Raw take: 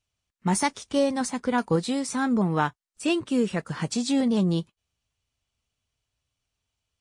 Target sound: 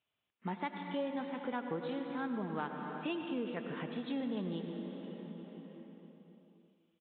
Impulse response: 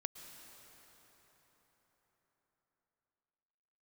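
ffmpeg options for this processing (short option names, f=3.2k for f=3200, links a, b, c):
-filter_complex "[0:a]highpass=210[a];[1:a]atrim=start_sample=2205,asetrate=61740,aresample=44100[b];[a][b]afir=irnorm=-1:irlink=0,acompressor=threshold=-51dB:ratio=2,aresample=8000,aresample=44100,volume=5.5dB"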